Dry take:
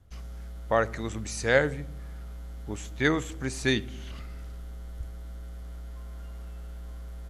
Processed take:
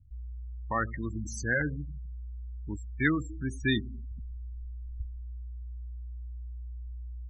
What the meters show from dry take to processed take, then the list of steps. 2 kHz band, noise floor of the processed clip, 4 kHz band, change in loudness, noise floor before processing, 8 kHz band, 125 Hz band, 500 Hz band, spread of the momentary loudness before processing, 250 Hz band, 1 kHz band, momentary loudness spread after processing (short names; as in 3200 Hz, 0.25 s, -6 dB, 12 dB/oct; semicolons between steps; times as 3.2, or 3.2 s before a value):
-2.0 dB, -40 dBFS, -5.5 dB, -6.0 dB, -40 dBFS, -6.5 dB, -0.5 dB, -11.0 dB, 17 LU, -0.5 dB, -4.0 dB, 14 LU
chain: spectral gate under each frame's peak -15 dB strong; band shelf 550 Hz -12.5 dB 1 oct